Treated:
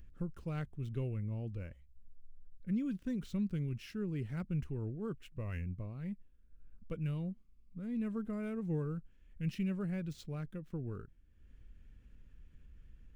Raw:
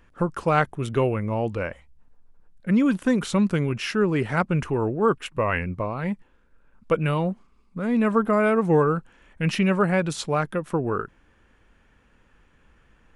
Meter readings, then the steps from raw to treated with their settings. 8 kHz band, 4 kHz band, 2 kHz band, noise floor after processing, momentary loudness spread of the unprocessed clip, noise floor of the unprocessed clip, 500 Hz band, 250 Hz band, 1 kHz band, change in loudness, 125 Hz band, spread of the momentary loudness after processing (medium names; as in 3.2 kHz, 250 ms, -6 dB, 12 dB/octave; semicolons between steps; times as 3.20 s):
under -20 dB, -21.0 dB, -24.5 dB, -63 dBFS, 10 LU, -60 dBFS, -22.5 dB, -14.5 dB, -29.5 dB, -16.0 dB, -11.0 dB, 9 LU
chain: median filter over 5 samples; upward compressor, threshold -39 dBFS; amplifier tone stack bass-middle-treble 10-0-1; trim +2.5 dB